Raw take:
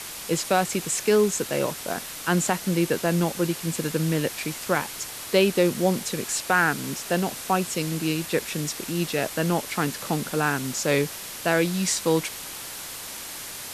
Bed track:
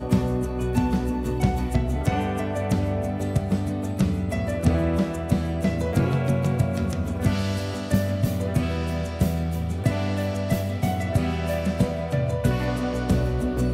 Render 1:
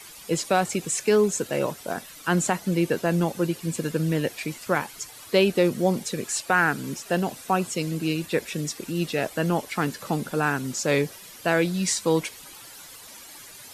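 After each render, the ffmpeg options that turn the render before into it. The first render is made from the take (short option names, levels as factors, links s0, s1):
-af "afftdn=nr=12:nf=-37"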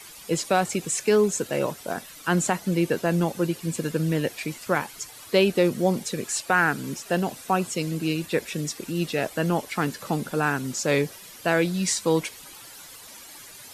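-af anull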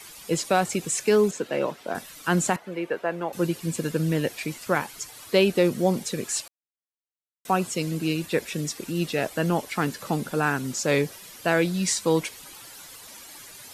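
-filter_complex "[0:a]asettb=1/sr,asplit=3[s0][s1][s2];[s0]atrim=end=1.314[s3];[s1]atrim=start=1.31:end=1.95,asetpts=PTS-STARTPTS,afade=t=in:d=0.004:c=qsin,afade=t=out:st=0.636:d=0.004:c=qsin,acrossover=split=170 4500:gain=0.2 1 0.224[s4][s5][s6];[s4][s5][s6]amix=inputs=3:normalize=0[s7];[s2]atrim=start=1.946[s8];[s3][s7]acrossfade=d=0.004:c1=hsin:c2=qsin[s9];[s9][s8]acrossfade=d=0.004:c1=qsin:c2=hsin,asettb=1/sr,asplit=3[s10][s11][s12];[s10]atrim=end=2.564[s13];[s11]atrim=start=2.56:end=3.33,asetpts=PTS-STARTPTS,afade=t=in:d=0.004:c=qsin,afade=t=out:st=0.766:d=0.004:c=qsin,acrossover=split=390 2700:gain=0.141 1 0.112[s14][s15][s16];[s14][s15][s16]amix=inputs=3:normalize=0[s17];[s12]atrim=start=3.326[s18];[s13][s17]acrossfade=d=0.004:c1=hsin:c2=qsin[s19];[s19][s18]acrossfade=d=0.004:c1=qsin:c2=hsin,asplit=3[s20][s21][s22];[s20]atrim=end=6.48,asetpts=PTS-STARTPTS,afade=t=out:st=6.476:d=0.004:c=hsin[s23];[s21]atrim=start=6.48:end=7.45,asetpts=PTS-STARTPTS,volume=0[s24];[s22]atrim=start=7.45,asetpts=PTS-STARTPTS,afade=t=in:d=0.004:c=hsin[s25];[s23][s24][s25]concat=n=3:v=0:a=1"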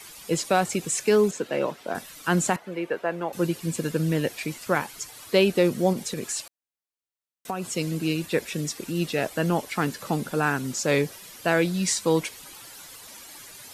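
-filter_complex "[0:a]asettb=1/sr,asplit=3[s0][s1][s2];[s0]atrim=end=5.934[s3];[s1]atrim=start=5.93:end=7.77,asetpts=PTS-STARTPTS,afade=t=in:d=0.004:c=qsin,afade=t=out:st=1.836:d=0.004:c=qsin,acompressor=threshold=0.0562:ratio=6:attack=3.2:release=140:knee=1:detection=peak[s4];[s2]atrim=start=7.766[s5];[s3][s4]acrossfade=d=0.004:c1=hsin:c2=qsin[s6];[s6][s5]acrossfade=d=0.004:c1=qsin:c2=hsin"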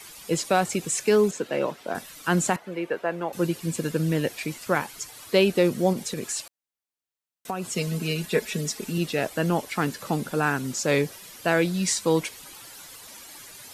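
-filter_complex "[0:a]asettb=1/sr,asplit=3[s0][s1][s2];[s0]atrim=end=7.754[s3];[s1]atrim=start=7.75:end=8.98,asetpts=PTS-STARTPTS,afade=t=in:d=0.004:c=qsin,afade=t=out:st=1.226:d=0.004:c=qsin,aecho=1:1:4.7:0.71,atrim=end_sample=54243[s4];[s2]atrim=start=8.976[s5];[s3][s4]acrossfade=d=0.004:c1=hsin:c2=qsin[s6];[s6][s5]acrossfade=d=0.004:c1=qsin:c2=hsin"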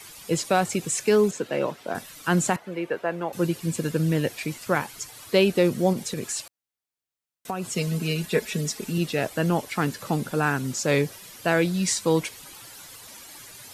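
-af "equalizer=f=110:t=o:w=0.87:g=5"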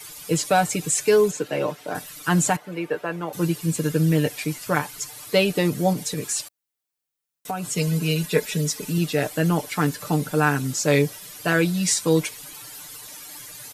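-af "highshelf=f=8200:g=6.5,aecho=1:1:6.7:0.65"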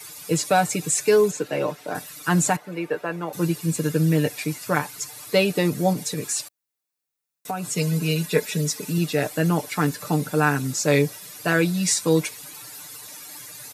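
-af "highpass=79,bandreject=f=3100:w=12"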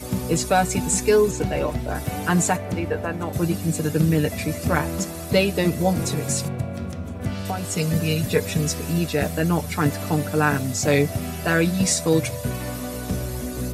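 -filter_complex "[1:a]volume=0.562[s0];[0:a][s0]amix=inputs=2:normalize=0"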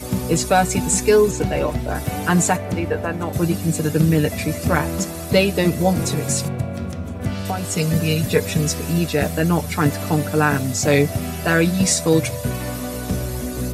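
-af "volume=1.41,alimiter=limit=0.708:level=0:latency=1"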